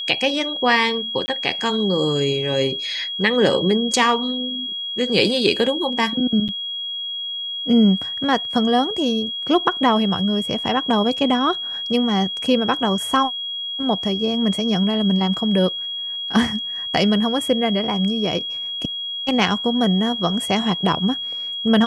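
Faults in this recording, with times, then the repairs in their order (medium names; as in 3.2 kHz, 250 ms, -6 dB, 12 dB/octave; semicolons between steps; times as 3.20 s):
whine 3.3 kHz -25 dBFS
1.26–1.28 s: dropout 20 ms
6.48–6.49 s: dropout 7.7 ms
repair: band-stop 3.3 kHz, Q 30; interpolate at 1.26 s, 20 ms; interpolate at 6.48 s, 7.7 ms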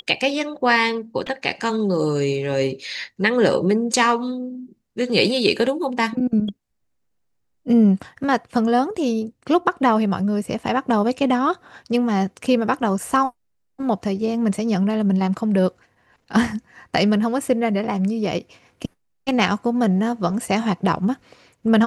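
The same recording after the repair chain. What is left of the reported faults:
nothing left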